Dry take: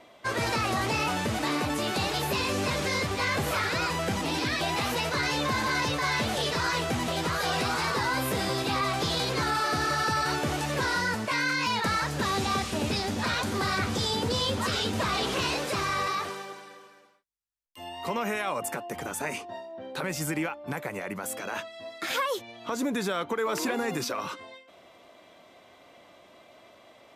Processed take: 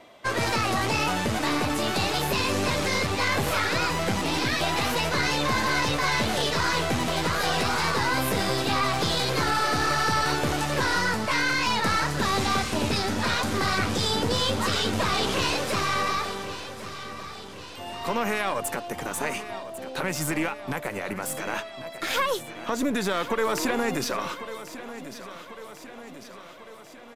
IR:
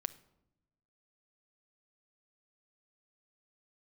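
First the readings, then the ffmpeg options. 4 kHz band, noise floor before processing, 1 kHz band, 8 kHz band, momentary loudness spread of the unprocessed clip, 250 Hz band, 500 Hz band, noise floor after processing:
+3.0 dB, -55 dBFS, +3.0 dB, +3.5 dB, 8 LU, +3.0 dB, +3.0 dB, -43 dBFS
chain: -af "aeval=exprs='0.178*(cos(1*acos(clip(val(0)/0.178,-1,1)))-cos(1*PI/2))+0.0316*(cos(2*acos(clip(val(0)/0.178,-1,1)))-cos(2*PI/2))+0.00631*(cos(6*acos(clip(val(0)/0.178,-1,1)))-cos(6*PI/2))':c=same,aecho=1:1:1096|2192|3288|4384|5480|6576:0.211|0.125|0.0736|0.0434|0.0256|0.0151,volume=2.5dB"

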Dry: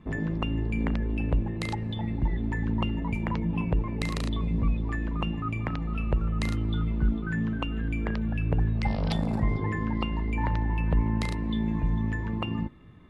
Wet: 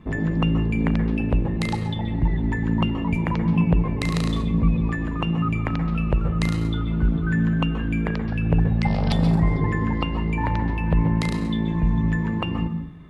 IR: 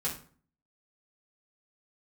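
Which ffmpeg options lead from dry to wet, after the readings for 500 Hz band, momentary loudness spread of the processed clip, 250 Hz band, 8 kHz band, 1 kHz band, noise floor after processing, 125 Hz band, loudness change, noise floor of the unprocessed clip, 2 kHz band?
+6.0 dB, 4 LU, +7.0 dB, n/a, +5.5 dB, -26 dBFS, +6.5 dB, +6.0 dB, -33 dBFS, +5.5 dB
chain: -filter_complex "[0:a]asplit=2[a][b];[1:a]atrim=start_sample=2205,adelay=125[c];[b][c]afir=irnorm=-1:irlink=0,volume=-12.5dB[d];[a][d]amix=inputs=2:normalize=0,volume=5dB"

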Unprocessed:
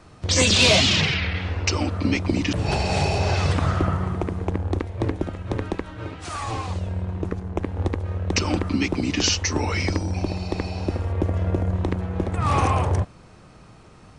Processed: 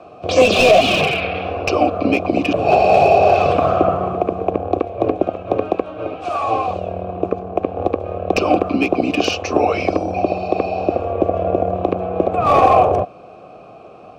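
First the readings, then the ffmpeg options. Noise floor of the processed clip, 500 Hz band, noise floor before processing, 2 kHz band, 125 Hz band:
-40 dBFS, +13.5 dB, -48 dBFS, +4.0 dB, -5.0 dB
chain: -filter_complex "[0:a]asplit=3[a][b][c];[a]bandpass=f=730:t=q:w=8,volume=0dB[d];[b]bandpass=f=1.09k:t=q:w=8,volume=-6dB[e];[c]bandpass=f=2.44k:t=q:w=8,volume=-9dB[f];[d][e][f]amix=inputs=3:normalize=0,lowshelf=f=670:t=q:w=1.5:g=8,acrossover=split=490|840[g][h][i];[i]aeval=exprs='clip(val(0),-1,0.0188)':c=same[j];[g][h][j]amix=inputs=3:normalize=0,alimiter=level_in=19.5dB:limit=-1dB:release=50:level=0:latency=1,volume=-1dB"

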